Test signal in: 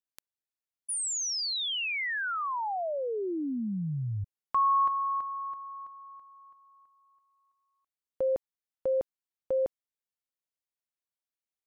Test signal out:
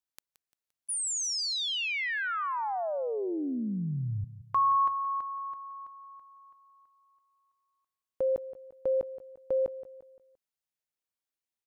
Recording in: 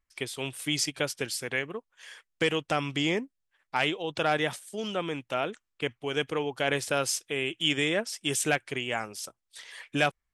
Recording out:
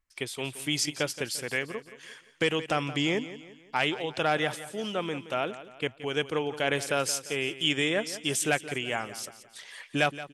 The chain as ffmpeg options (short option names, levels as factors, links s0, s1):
-af "aecho=1:1:173|346|519|692:0.188|0.0791|0.0332|0.014"